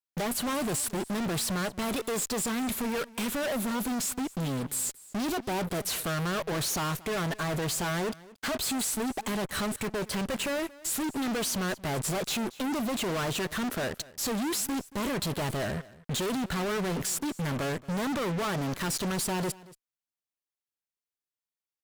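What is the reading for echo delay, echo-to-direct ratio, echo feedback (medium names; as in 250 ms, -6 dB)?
229 ms, -20.5 dB, no regular repeats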